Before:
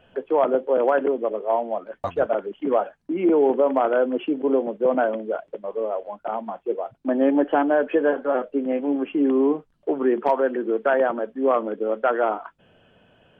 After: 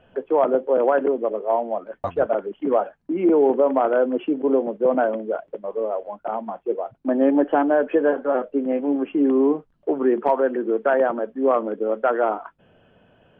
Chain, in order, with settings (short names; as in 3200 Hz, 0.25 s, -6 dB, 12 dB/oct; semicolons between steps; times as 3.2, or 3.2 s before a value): high shelf 3100 Hz -11 dB; gain +1.5 dB